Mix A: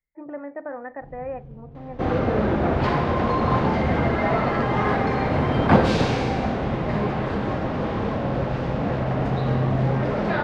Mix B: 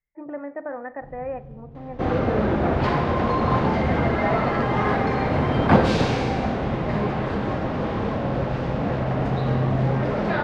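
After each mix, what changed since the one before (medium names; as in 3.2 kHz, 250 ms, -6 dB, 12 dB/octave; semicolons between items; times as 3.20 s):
speech: send +11.0 dB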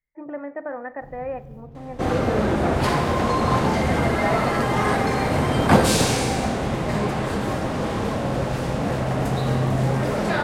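master: remove distance through air 230 m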